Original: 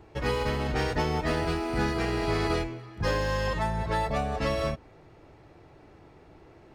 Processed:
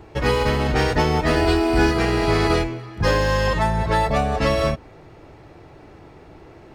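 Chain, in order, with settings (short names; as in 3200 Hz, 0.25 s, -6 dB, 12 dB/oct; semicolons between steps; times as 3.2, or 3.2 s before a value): 1.35–1.91 comb 2.8 ms, depth 66%; gain +8.5 dB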